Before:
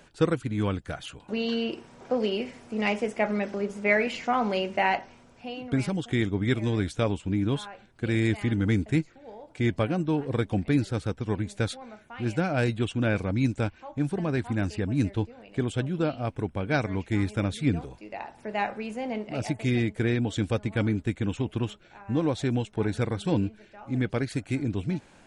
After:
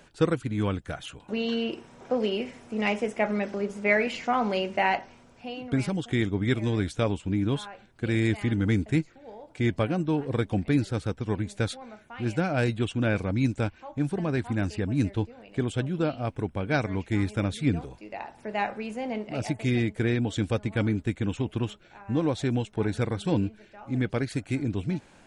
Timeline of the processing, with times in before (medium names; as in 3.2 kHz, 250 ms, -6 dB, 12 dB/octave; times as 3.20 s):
0.58–3.37 s: band-stop 4.6 kHz